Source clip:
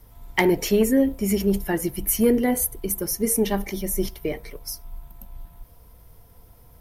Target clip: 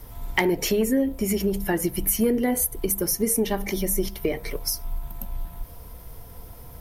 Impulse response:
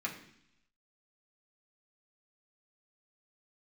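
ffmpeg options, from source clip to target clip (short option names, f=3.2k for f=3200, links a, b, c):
-af "acompressor=threshold=-32dB:ratio=3,bandreject=f=50:t=h:w=6,bandreject=f=100:t=h:w=6,bandreject=f=150:t=h:w=6,bandreject=f=200:t=h:w=6,volume=9dB"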